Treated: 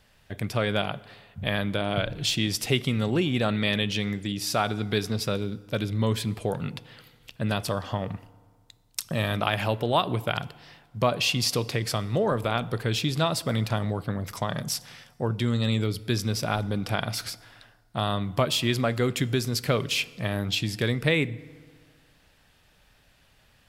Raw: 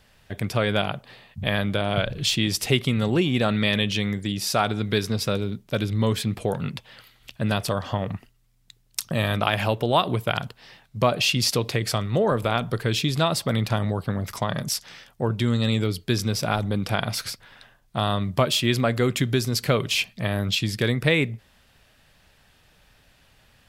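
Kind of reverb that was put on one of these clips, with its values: FDN reverb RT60 1.8 s, low-frequency decay 1×, high-frequency decay 0.65×, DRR 18.5 dB; trim -3 dB

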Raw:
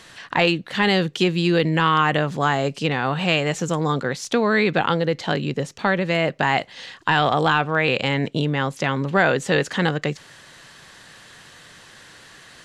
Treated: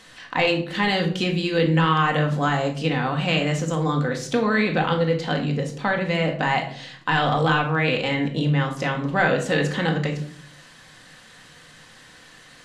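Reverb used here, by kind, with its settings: simulated room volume 710 m³, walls furnished, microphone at 2 m; trim -4.5 dB

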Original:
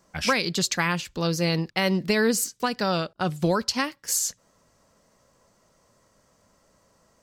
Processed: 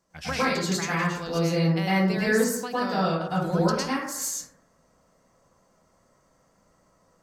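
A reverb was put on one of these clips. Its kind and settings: plate-style reverb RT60 0.83 s, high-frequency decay 0.3×, pre-delay 95 ms, DRR -9 dB; trim -10.5 dB

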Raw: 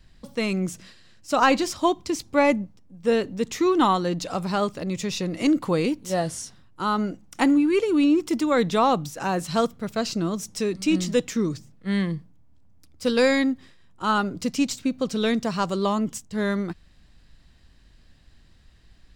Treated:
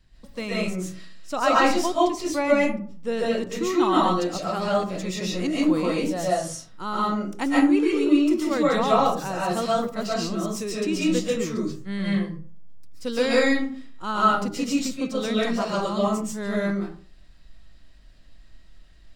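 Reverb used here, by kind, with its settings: algorithmic reverb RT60 0.44 s, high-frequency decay 0.55×, pre-delay 95 ms, DRR -6.5 dB; trim -6.5 dB

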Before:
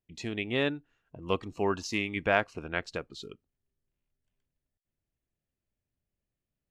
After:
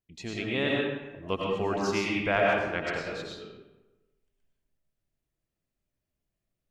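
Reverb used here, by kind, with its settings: algorithmic reverb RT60 1.1 s, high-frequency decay 0.65×, pre-delay 65 ms, DRR -3.5 dB; trim -2 dB

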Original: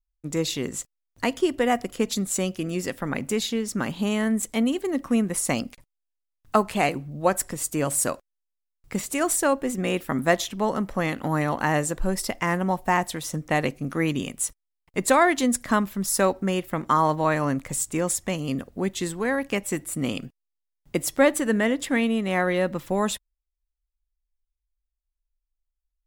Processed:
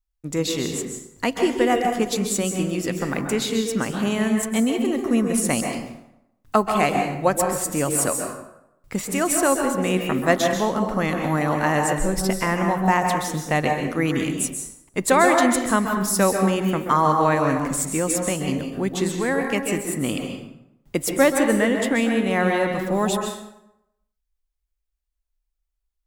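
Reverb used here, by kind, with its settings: plate-style reverb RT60 0.85 s, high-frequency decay 0.65×, pre-delay 120 ms, DRR 3 dB; trim +1.5 dB

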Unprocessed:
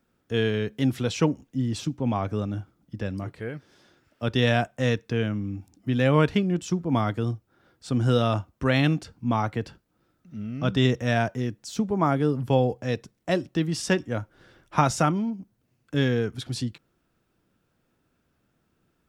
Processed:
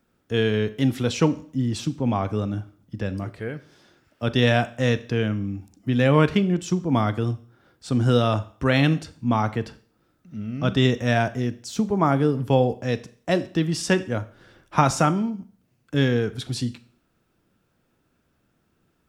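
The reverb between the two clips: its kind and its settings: Schroeder reverb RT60 0.48 s, combs from 29 ms, DRR 14.5 dB; trim +2.5 dB

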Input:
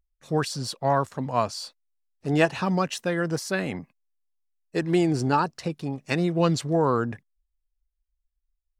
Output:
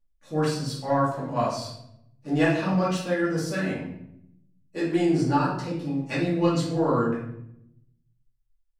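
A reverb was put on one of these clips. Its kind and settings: simulated room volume 190 m³, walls mixed, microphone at 2.4 m; trim -10 dB

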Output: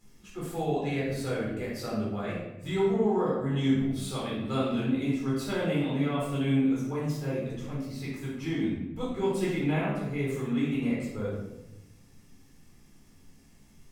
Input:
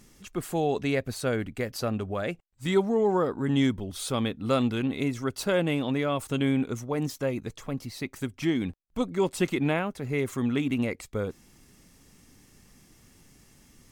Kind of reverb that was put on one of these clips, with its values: simulated room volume 380 m³, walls mixed, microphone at 4 m; trim -14 dB

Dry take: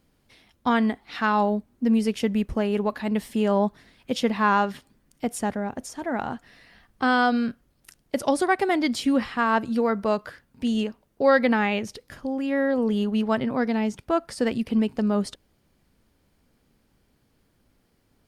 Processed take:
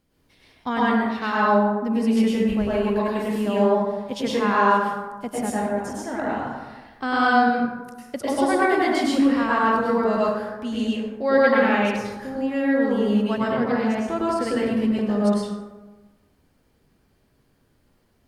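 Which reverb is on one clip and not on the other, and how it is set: plate-style reverb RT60 1.2 s, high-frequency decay 0.45×, pre-delay 90 ms, DRR -7 dB; trim -5 dB

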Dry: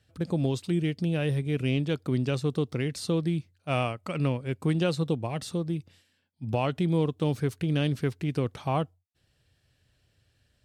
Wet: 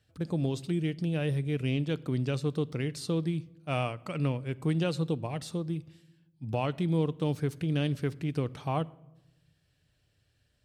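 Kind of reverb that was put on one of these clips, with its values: simulated room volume 3600 m³, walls furnished, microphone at 0.43 m; trim -3.5 dB

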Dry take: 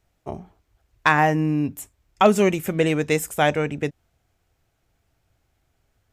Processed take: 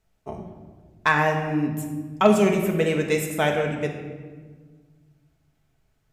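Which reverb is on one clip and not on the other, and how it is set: simulated room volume 1500 m³, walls mixed, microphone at 1.5 m; trim -4 dB

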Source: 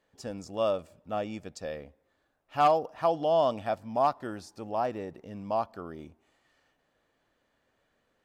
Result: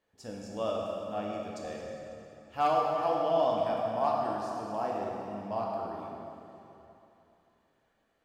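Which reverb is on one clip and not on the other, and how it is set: plate-style reverb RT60 3 s, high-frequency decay 0.8×, DRR -3 dB; trim -6.5 dB

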